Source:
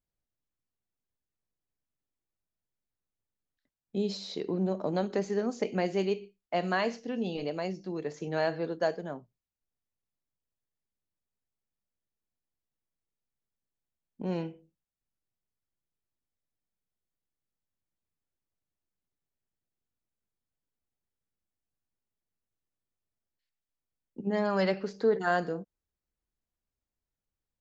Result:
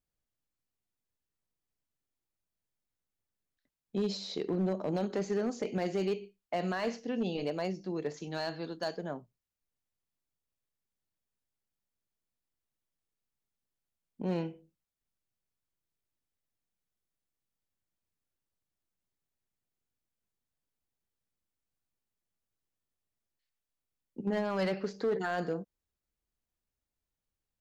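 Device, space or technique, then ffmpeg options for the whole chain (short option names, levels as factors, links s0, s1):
limiter into clipper: -filter_complex "[0:a]asettb=1/sr,asplit=3[s0][s1][s2];[s0]atrim=end=8.174[s3];[s1]atrim=start=8.17:end=8.98,asetpts=PTS-STARTPTS,afade=t=in:d=0.004:c=qsin,afade=t=out:st=0.806:d=0.004:c=qsin,equalizer=f=125:t=o:w=1:g=-5,equalizer=f=500:t=o:w=1:g=-9,equalizer=f=2000:t=o:w=1:g=-5,equalizer=f=4000:t=o:w=1:g=6[s4];[s2]atrim=start=8.976[s5];[s3][s4]acrossfade=d=0.004:c1=hsin:c2=qsin[s6];[s6][s5]acrossfade=d=0.004:c1=qsin:c2=hsin,alimiter=limit=0.075:level=0:latency=1:release=23,asoftclip=type=hard:threshold=0.0562"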